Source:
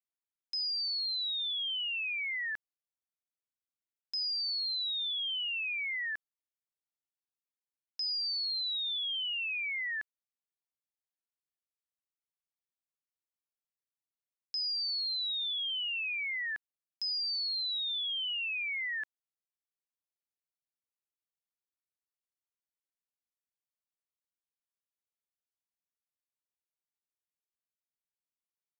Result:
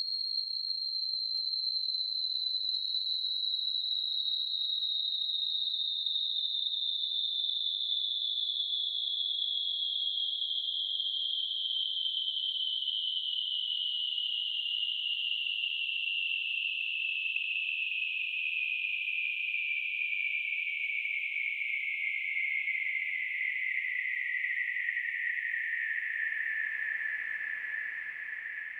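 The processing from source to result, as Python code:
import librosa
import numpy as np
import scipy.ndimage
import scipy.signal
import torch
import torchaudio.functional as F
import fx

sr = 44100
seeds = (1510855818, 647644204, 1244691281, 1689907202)

y = fx.quant_dither(x, sr, seeds[0], bits=12, dither='none')
y = fx.paulstretch(y, sr, seeds[1], factor=18.0, window_s=0.25, from_s=17.52)
y = fx.echo_alternate(y, sr, ms=688, hz=2100.0, feedback_pct=83, wet_db=-5.5)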